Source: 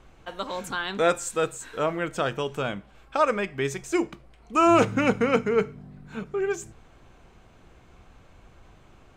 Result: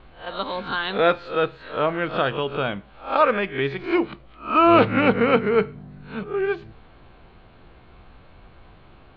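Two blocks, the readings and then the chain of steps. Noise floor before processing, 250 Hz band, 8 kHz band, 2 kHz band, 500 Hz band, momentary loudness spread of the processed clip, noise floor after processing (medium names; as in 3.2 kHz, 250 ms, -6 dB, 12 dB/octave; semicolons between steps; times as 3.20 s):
-55 dBFS, +3.5 dB, under -35 dB, +4.5 dB, +3.5 dB, 15 LU, -50 dBFS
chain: reverse spectral sustain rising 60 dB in 0.35 s; Chebyshev low-pass 4.4 kHz, order 6; trim +3.5 dB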